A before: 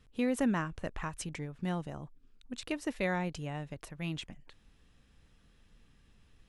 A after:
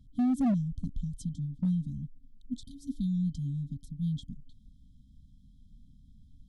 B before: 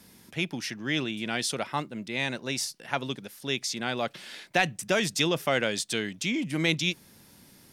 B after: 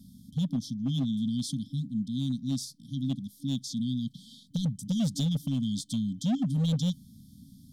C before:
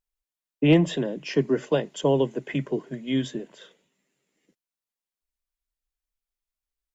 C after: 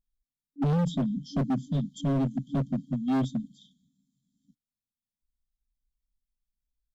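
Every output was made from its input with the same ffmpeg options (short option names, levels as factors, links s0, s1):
-af "tiltshelf=f=970:g=8,afftfilt=real='re*(1-between(b*sr/4096,290,3100))':imag='im*(1-between(b*sr/4096,290,3100))':win_size=4096:overlap=0.75,asoftclip=type=hard:threshold=0.0708"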